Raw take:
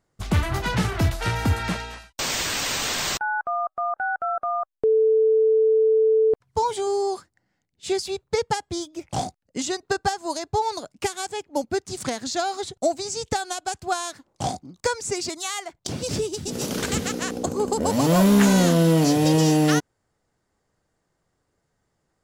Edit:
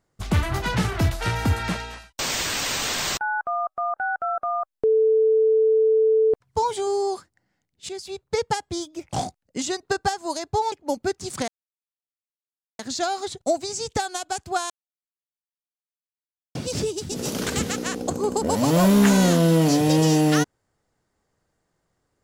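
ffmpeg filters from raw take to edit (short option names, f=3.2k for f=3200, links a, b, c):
-filter_complex "[0:a]asplit=6[a][b][c][d][e][f];[a]atrim=end=7.89,asetpts=PTS-STARTPTS,afade=t=out:st=7.886:d=0.004:c=hsin:silence=0.237137[g];[b]atrim=start=7.89:end=10.722,asetpts=PTS-STARTPTS,afade=t=in:d=0.54:silence=0.237137[h];[c]atrim=start=11.388:end=12.15,asetpts=PTS-STARTPTS,afade=t=out:st=0.758:d=0.004:c=hsin,apad=pad_dur=1.31[i];[d]atrim=start=12.15:end=14.06,asetpts=PTS-STARTPTS,afade=t=in:d=0.004:c=hsin,afade=t=out:st=1.906:d=0.004:c=hsin[j];[e]atrim=start=14.06:end=15.91,asetpts=PTS-STARTPTS,volume=0[k];[f]atrim=start=15.91,asetpts=PTS-STARTPTS,afade=t=in:d=0.004:c=hsin[l];[g][h]concat=n=2:v=0:a=1[m];[i][j][k][l]concat=n=4:v=0:a=1[n];[m][n]acrossfade=d=0.004:c1=hsin:c2=hsin"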